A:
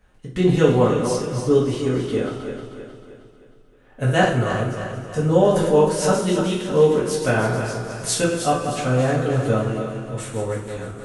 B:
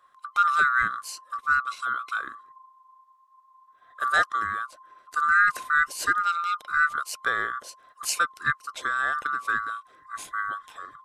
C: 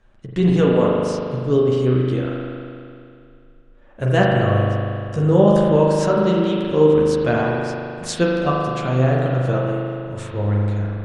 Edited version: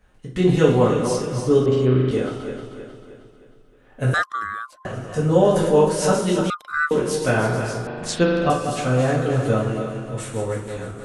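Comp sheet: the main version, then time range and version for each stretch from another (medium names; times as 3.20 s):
A
1.66–2.11 s: from C
4.14–4.85 s: from B
6.50–6.91 s: from B
7.87–8.50 s: from C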